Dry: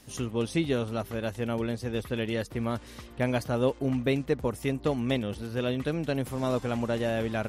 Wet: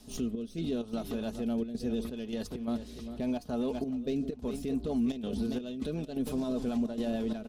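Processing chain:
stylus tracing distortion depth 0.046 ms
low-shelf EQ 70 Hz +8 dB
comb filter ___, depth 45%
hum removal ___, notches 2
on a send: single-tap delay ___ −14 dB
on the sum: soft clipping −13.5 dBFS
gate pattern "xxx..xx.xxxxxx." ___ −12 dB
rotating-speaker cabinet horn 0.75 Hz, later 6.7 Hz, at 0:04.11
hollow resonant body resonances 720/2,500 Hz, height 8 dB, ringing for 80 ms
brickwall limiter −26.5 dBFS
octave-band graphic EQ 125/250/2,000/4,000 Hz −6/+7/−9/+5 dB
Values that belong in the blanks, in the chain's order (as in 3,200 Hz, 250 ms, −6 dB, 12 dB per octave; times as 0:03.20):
4.7 ms, 102.2 Hz, 408 ms, 129 BPM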